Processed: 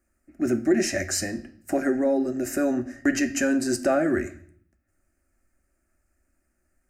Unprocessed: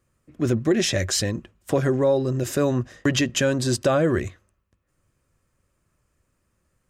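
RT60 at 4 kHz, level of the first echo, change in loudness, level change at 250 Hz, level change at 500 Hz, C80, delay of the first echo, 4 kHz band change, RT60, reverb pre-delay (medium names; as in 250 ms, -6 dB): 0.60 s, no echo, -2.0 dB, +0.5 dB, -3.0 dB, 19.0 dB, no echo, -8.5 dB, 0.55 s, 3 ms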